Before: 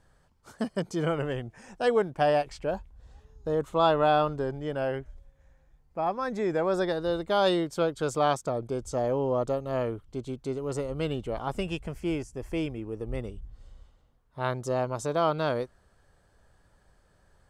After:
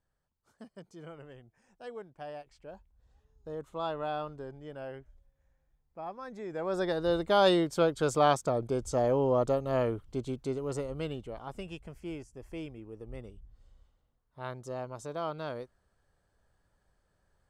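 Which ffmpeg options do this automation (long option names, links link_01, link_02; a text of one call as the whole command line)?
ffmpeg -i in.wav -af "volume=0.5dB,afade=type=in:start_time=2.48:duration=1.01:silence=0.446684,afade=type=in:start_time=6.5:duration=0.63:silence=0.237137,afade=type=out:start_time=10.18:duration=1.2:silence=0.298538" out.wav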